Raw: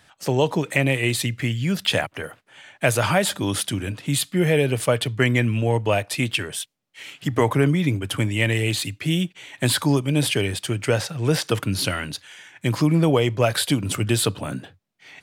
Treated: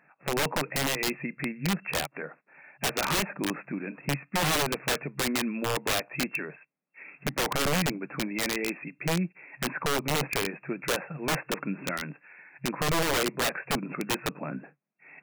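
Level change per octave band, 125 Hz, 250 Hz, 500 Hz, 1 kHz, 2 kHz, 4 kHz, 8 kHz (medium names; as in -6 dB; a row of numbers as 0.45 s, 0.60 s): -14.0 dB, -9.0 dB, -9.0 dB, -3.0 dB, -5.0 dB, -6.0 dB, -5.5 dB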